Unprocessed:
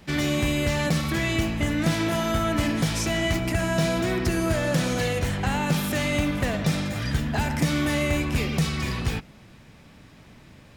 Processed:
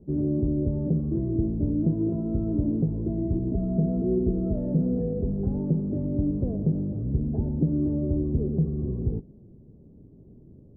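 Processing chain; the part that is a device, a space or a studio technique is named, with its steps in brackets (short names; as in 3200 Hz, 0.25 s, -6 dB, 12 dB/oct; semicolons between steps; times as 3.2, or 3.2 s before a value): 3.51–5.47 comb 4.6 ms, depth 61%; under water (LPF 440 Hz 24 dB/oct; bell 390 Hz +6.5 dB 0.28 oct)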